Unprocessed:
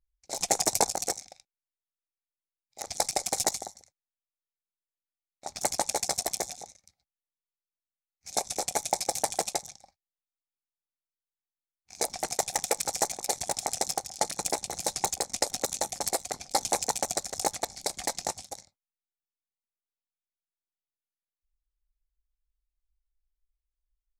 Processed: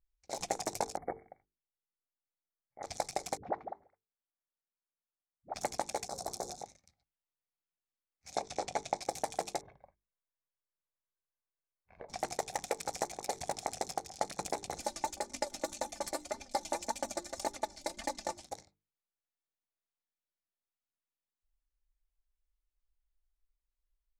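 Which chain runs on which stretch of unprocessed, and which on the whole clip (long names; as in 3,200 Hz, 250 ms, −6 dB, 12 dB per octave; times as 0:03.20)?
0:00.97–0:02.83: linear-phase brick-wall band-stop 2,300–9,300 Hz + high-frequency loss of the air 490 metres
0:03.37–0:05.54: low-pass filter 1,500 Hz 24 dB per octave + spectral tilt +1.5 dB per octave + all-pass dispersion highs, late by 65 ms, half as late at 310 Hz
0:06.08–0:06.62: flat-topped bell 2,400 Hz −11.5 dB 1.1 octaves + mains-hum notches 60/120/180/240/300/360/420/480/540 Hz + compressor whose output falls as the input rises −31 dBFS, ratio −0.5
0:08.37–0:09.02: low-pass filter 6,100 Hz + mains-hum notches 50/100/150/200/250/300/350/400/450 Hz
0:09.61–0:12.09: low-pass filter 2,000 Hz 24 dB per octave + comb filter 1.9 ms, depth 51% + downward compressor 5 to 1, threshold −45 dBFS
0:14.77–0:18.43: comb filter 3.4 ms, depth 91% + flanger 1.8 Hz, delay 3.5 ms, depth 3.3 ms, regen +39%
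whole clip: mains-hum notches 50/100/150/200/250/300/350/400/450 Hz; downward compressor 3 to 1, threshold −29 dBFS; high-shelf EQ 4,000 Hz −12 dB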